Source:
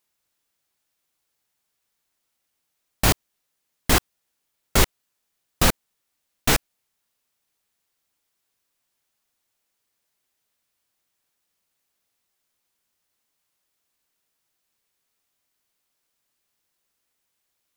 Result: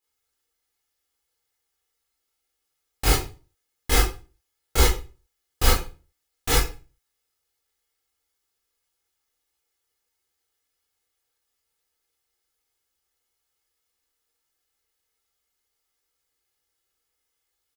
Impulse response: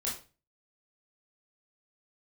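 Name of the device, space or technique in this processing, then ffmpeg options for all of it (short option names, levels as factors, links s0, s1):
microphone above a desk: -filter_complex "[0:a]aecho=1:1:2.4:0.68[s0];[1:a]atrim=start_sample=2205[s1];[s0][s1]afir=irnorm=-1:irlink=0,volume=0.447"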